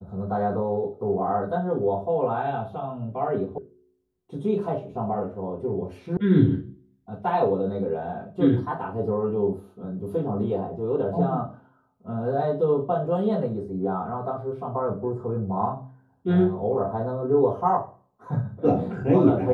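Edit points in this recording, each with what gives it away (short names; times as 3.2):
3.58 sound cut off
6.17 sound cut off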